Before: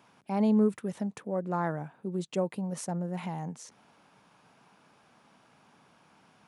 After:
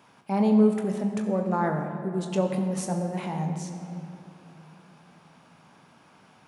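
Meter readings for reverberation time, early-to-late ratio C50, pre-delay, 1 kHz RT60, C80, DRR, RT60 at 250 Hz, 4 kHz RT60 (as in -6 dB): 2.9 s, 6.0 dB, 21 ms, 2.6 s, 7.0 dB, 3.5 dB, 4.0 s, 1.9 s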